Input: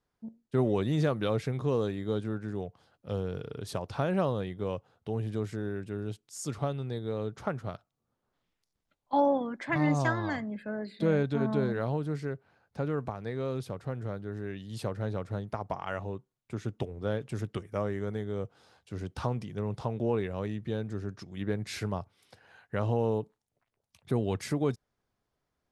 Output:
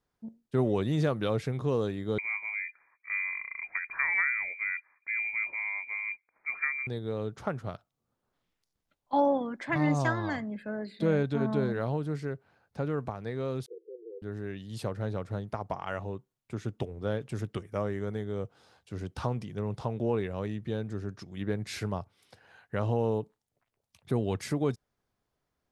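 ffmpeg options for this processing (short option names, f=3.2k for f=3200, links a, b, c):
-filter_complex "[0:a]asettb=1/sr,asplit=3[a][b][c];[a]atrim=end=2.184[d];[b]atrim=start=2.18:end=6.87,asetpts=PTS-STARTPTS,afade=t=in:d=0.004:c=qsin,afade=t=out:st=4.686:d=0.004:c=qsin,lowpass=f=2.1k:t=q:w=0.5098,lowpass=f=2.1k:t=q:w=0.6013,lowpass=f=2.1k:t=q:w=0.9,lowpass=f=2.1k:t=q:w=2.563,afreqshift=-2500[e];[c]atrim=start=6.866[f];[d][e]acrossfade=d=0.004:c1=hsin:c2=qsin[g];[g][f]acrossfade=d=0.004:c1=qsin:c2=hsin,asettb=1/sr,asplit=3[h][i][j];[h]atrim=end=13.664[k];[i]atrim=start=13.66:end=14.22,asetpts=PTS-STARTPTS,afade=t=in:d=0.004:c=qsin,afade=t=out:st=0.556:d=0.004:c=qsin,asuperpass=centerf=410:order=20:qfactor=2.3[l];[j]atrim=start=14.216[m];[k][l]acrossfade=d=0.004:c1=hsin:c2=qsin[n];[n][m]acrossfade=d=0.004:c1=qsin:c2=hsin"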